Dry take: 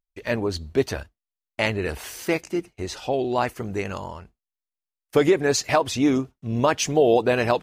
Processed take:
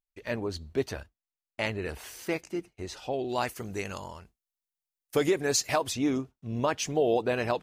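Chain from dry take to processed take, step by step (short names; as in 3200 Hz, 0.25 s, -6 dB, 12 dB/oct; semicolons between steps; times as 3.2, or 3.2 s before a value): 3.28–5.92 high shelf 3000 Hz -> 5900 Hz +11 dB; gain -7.5 dB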